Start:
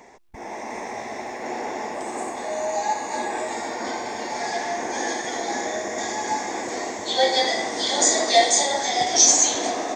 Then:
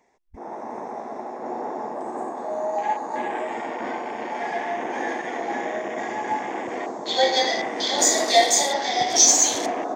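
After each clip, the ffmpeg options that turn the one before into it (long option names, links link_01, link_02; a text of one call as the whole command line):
ffmpeg -i in.wav -af "afwtdn=0.0224" out.wav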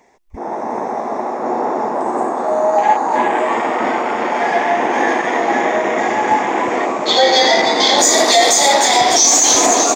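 ffmpeg -i in.wav -filter_complex "[0:a]asplit=2[link_01][link_02];[link_02]asplit=7[link_03][link_04][link_05][link_06][link_07][link_08][link_09];[link_03]adelay=301,afreqshift=140,volume=-10dB[link_10];[link_04]adelay=602,afreqshift=280,volume=-14.4dB[link_11];[link_05]adelay=903,afreqshift=420,volume=-18.9dB[link_12];[link_06]adelay=1204,afreqshift=560,volume=-23.3dB[link_13];[link_07]adelay=1505,afreqshift=700,volume=-27.7dB[link_14];[link_08]adelay=1806,afreqshift=840,volume=-32.2dB[link_15];[link_09]adelay=2107,afreqshift=980,volume=-36.6dB[link_16];[link_10][link_11][link_12][link_13][link_14][link_15][link_16]amix=inputs=7:normalize=0[link_17];[link_01][link_17]amix=inputs=2:normalize=0,alimiter=level_in=12.5dB:limit=-1dB:release=50:level=0:latency=1,volume=-1dB" out.wav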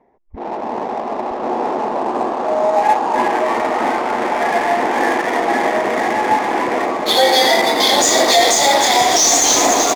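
ffmpeg -i in.wav -af "adynamicsmooth=sensitivity=3:basefreq=990,aecho=1:1:967:0.282,volume=-1dB" out.wav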